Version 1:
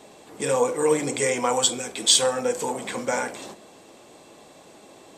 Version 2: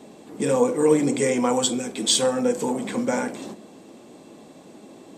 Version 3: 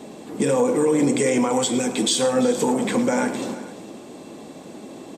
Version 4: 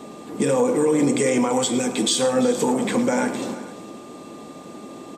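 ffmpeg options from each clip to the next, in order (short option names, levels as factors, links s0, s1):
-af "equalizer=f=230:w=0.83:g=13,volume=0.708"
-filter_complex "[0:a]alimiter=limit=0.141:level=0:latency=1:release=112,acontrast=59,asplit=2[s0][s1];[s1]aecho=0:1:108|342|450:0.2|0.133|0.119[s2];[s0][s2]amix=inputs=2:normalize=0"
-af "aeval=exprs='val(0)+0.00501*sin(2*PI*1200*n/s)':c=same"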